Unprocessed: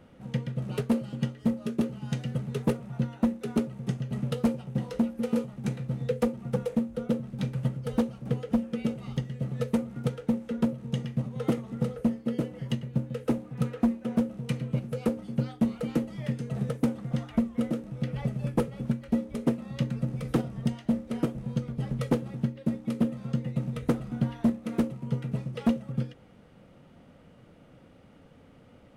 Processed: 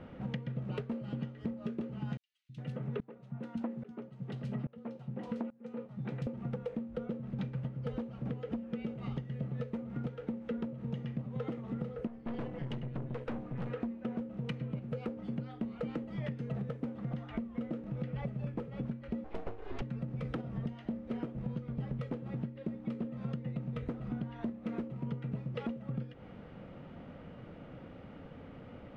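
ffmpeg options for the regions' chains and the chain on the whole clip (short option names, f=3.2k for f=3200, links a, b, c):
-filter_complex "[0:a]asettb=1/sr,asplit=3[a][b][c];[a]atrim=end=2.174[d];[b]atrim=start=2.17:end=6.27,asetpts=PTS-STARTPTS,afade=t=in:d=0.004:c=qsin,afade=t=out:st=4.096:d=0.004:c=qsin,highpass=120,acrossover=split=210|3200[e][f][g];[e]adelay=320[h];[f]adelay=410[i];[h][i][g]amix=inputs=3:normalize=0,atrim=end_sample=180810,aeval=exprs='val(0)*pow(10,-25*if(lt(mod(-1.2*n/s,1),2*abs(-1.2)/1000),1-mod(-1.2*n/s,1)/(2*abs(-1.2)/1000),(mod(-1.2*n/s,1)-2*abs(-1.2)/1000)/(1-2*abs(-1.2)/1000))/20)':c=same[j];[c]atrim=start=6.266[k];[d][j]acrossfade=d=0.004:c1=hsin:c2=qsin[l];[l][k]acrossfade=d=0.004:c1=qsin:c2=hsin,asettb=1/sr,asplit=3[m][n][o];[m]atrim=end=12.074[p];[n]atrim=start=12.07:end=13.7,asetpts=PTS-STARTPTS,afade=t=in:d=0.004:c=qsin,afade=t=out:st=1.626:d=0.004:c=qsin,bandreject=f=48.88:t=h:w=4,bandreject=f=97.76:t=h:w=4,bandreject=f=146.64:t=h:w=4,aeval=exprs='(tanh(63.1*val(0)+0.6)-tanh(0.6))/63.1':c=same[q];[o]atrim=start=13.696[r];[p][q]acrossfade=d=0.004:c1=hsin:c2=qsin[s];[s][r]acrossfade=d=0.004:c1=qsin:c2=hsin,asettb=1/sr,asplit=3[t][u][v];[t]atrim=end=19.244[w];[u]atrim=start=19.24:end=19.82,asetpts=PTS-STARTPTS,afade=t=in:d=0.004:c=qsin,afade=t=out:st=0.576:d=0.004:c=qsin,highpass=f=95:w=0.5412,highpass=f=95:w=1.3066,aeval=exprs='abs(val(0))':c=same[x];[v]atrim=start=19.816[y];[w][x]acrossfade=d=0.004:c1=hsin:c2=qsin[z];[z][y]acrossfade=d=0.004:c1=qsin:c2=hsin,lowpass=2.8k,alimiter=limit=-23dB:level=0:latency=1:release=286,acompressor=threshold=-40dB:ratio=6,volume=5.5dB"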